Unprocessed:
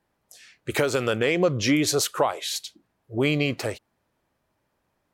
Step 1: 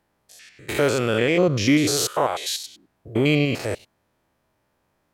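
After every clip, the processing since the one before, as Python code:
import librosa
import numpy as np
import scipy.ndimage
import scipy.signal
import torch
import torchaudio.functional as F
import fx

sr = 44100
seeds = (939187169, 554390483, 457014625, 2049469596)

y = fx.spec_steps(x, sr, hold_ms=100)
y = y * librosa.db_to_amplitude(5.0)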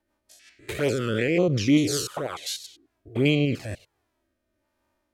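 y = fx.env_flanger(x, sr, rest_ms=3.3, full_db=-14.0)
y = fx.rotary_switch(y, sr, hz=5.5, then_hz=1.2, switch_at_s=2.51)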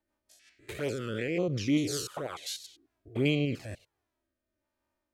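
y = fx.rider(x, sr, range_db=10, speed_s=2.0)
y = y * librosa.db_to_amplitude(-8.5)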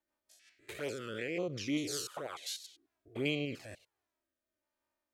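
y = fx.low_shelf(x, sr, hz=260.0, db=-10.5)
y = y * librosa.db_to_amplitude(-3.0)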